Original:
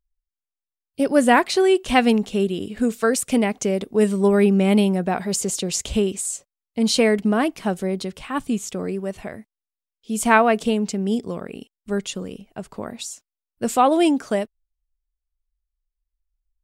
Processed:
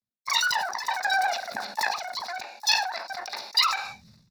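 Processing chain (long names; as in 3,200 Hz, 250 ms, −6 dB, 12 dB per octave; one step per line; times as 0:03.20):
running median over 25 samples
output level in coarse steps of 17 dB
bad sample-rate conversion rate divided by 6×, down none, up hold
multiband delay without the direct sound highs, lows 70 ms, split 1,200 Hz
on a send at −12.5 dB: convolution reverb RT60 1.0 s, pre-delay 3 ms
on the sum: brickwall limiter −16.5 dBFS, peak gain reduction 9 dB
notch comb filter 810 Hz
change of speed 3.86×
flat-topped bell 4,800 Hz +15 dB 1 octave
level that may fall only so fast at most 68 dB per second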